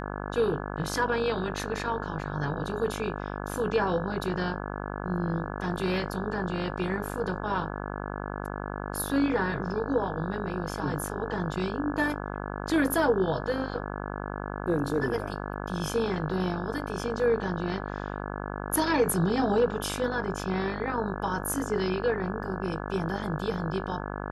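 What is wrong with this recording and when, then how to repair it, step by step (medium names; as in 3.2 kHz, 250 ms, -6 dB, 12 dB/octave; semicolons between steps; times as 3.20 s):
buzz 50 Hz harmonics 34 -35 dBFS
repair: de-hum 50 Hz, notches 34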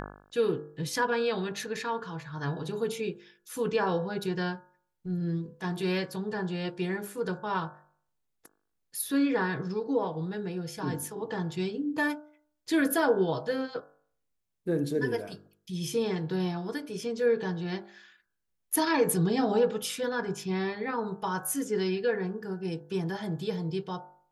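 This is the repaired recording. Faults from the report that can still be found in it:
nothing left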